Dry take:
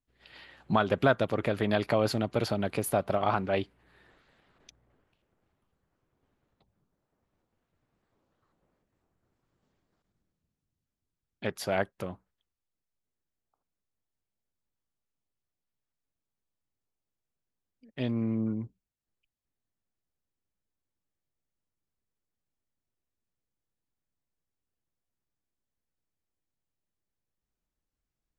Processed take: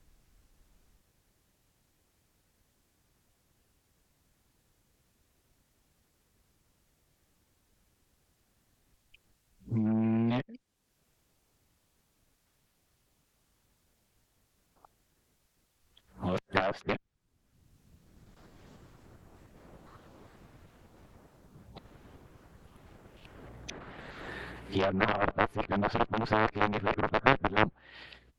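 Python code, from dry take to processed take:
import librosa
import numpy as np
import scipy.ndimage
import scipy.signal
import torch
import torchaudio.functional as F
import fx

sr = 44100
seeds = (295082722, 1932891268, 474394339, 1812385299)

y = x[::-1].copy()
y = fx.low_shelf(y, sr, hz=100.0, db=5.0)
y = fx.env_lowpass_down(y, sr, base_hz=2100.0, full_db=-26.0)
y = fx.cheby_harmonics(y, sr, harmonics=(2, 3), levels_db=(-15, -7), full_scale_db=-10.0)
y = fx.band_squash(y, sr, depth_pct=70)
y = y * librosa.db_to_amplitude(8.5)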